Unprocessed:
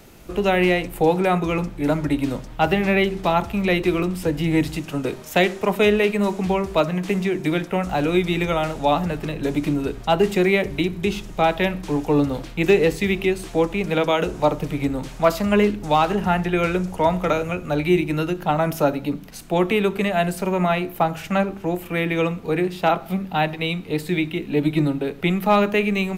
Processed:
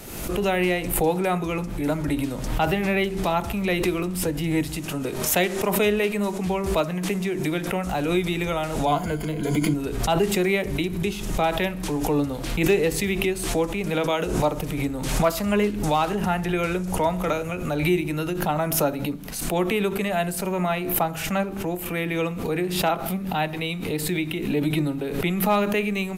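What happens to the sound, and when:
8.86–9.74 ripple EQ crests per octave 1.8, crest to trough 14 dB
whole clip: bell 11000 Hz +8.5 dB 1.1 oct; backwards sustainer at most 50 dB/s; gain -4.5 dB

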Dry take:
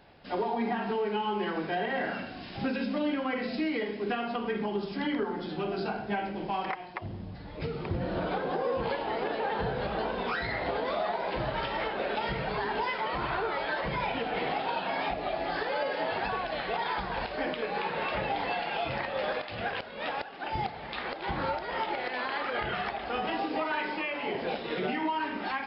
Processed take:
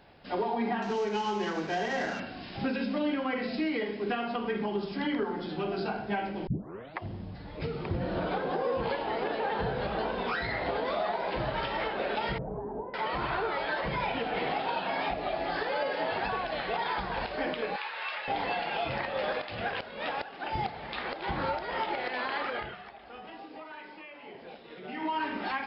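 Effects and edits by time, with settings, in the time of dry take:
0.82–2.2 CVSD 32 kbps
6.47 tape start 0.52 s
12.38–12.94 Bessel low-pass 510 Hz, order 4
17.76–18.28 HPF 1200 Hz
22.45–25.16 dip -14 dB, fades 0.32 s

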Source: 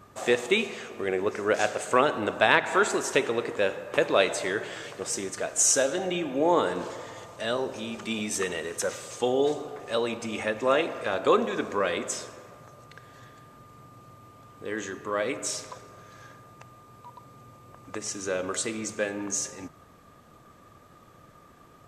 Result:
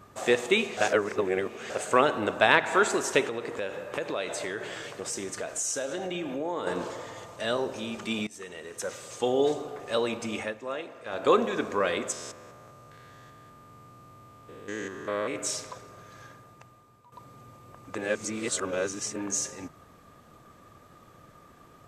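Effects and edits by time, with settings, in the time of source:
0.77–1.7 reverse
3.27–6.67 compressor 3:1, threshold -30 dBFS
8.27–9.4 fade in linear, from -20.5 dB
10.34–11.29 dip -11.5 dB, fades 0.24 s
12.12–15.36 stepped spectrum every 0.2 s
16.23–17.12 fade out, to -13 dB
17.98–19.16 reverse

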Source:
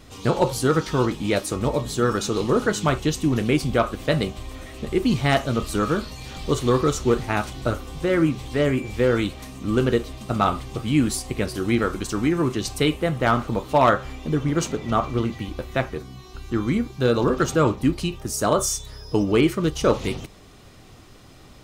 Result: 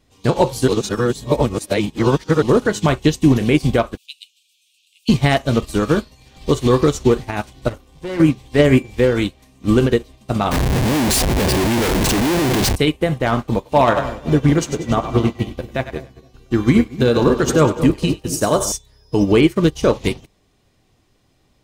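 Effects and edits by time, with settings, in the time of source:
0.68–2.42 reverse
3.97–5.09 steep high-pass 2500 Hz 96 dB/oct
7.68–8.2 tube stage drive 25 dB, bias 0.35
10.51–12.76 Schmitt trigger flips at -36 dBFS
13.53–18.72 split-band echo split 520 Hz, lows 0.233 s, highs 97 ms, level -9 dB
whole clip: bell 1300 Hz -7.5 dB 0.24 oct; maximiser +14 dB; upward expander 2.5:1, over -23 dBFS; gain -1.5 dB

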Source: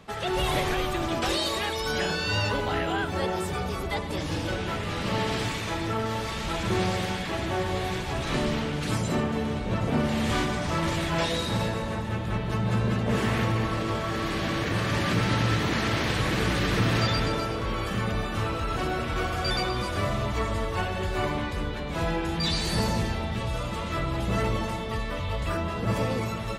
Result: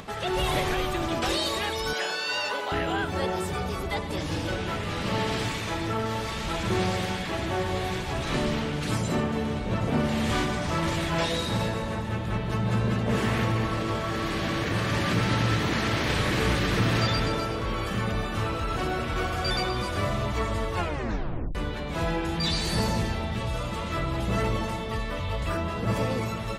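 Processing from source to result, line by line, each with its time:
1.93–2.72 HPF 510 Hz
16.03–16.55 flutter echo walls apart 5.8 m, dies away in 0.29 s
20.77 tape stop 0.78 s
whole clip: upward compressor, threshold -35 dBFS

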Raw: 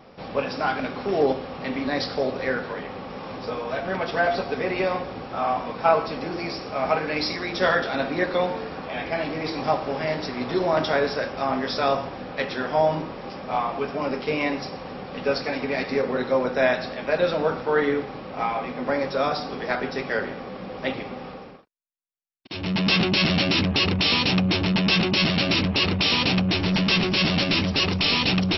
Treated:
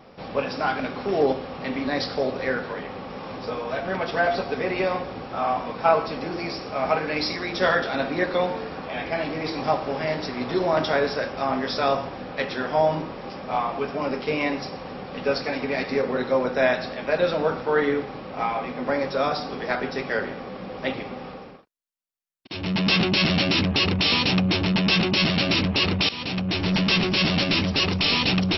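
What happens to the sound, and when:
26.09–26.71 fade in, from -15.5 dB

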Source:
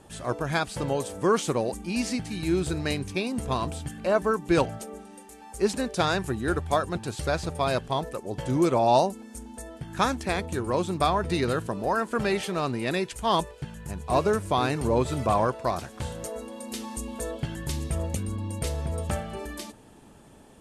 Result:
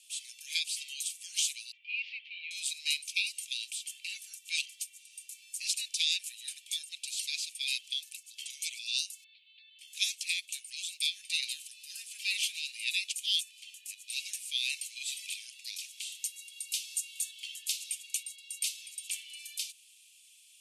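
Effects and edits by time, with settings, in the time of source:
1.72–2.51 steep low-pass 3000 Hz
9.24–9.79 steep low-pass 4200 Hz 96 dB/oct
11.54–12.22 echo throw 0.35 s, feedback 35%, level -4.5 dB
whole clip: steep high-pass 2400 Hz 72 dB/oct; ending taper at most 600 dB/s; gain +5 dB

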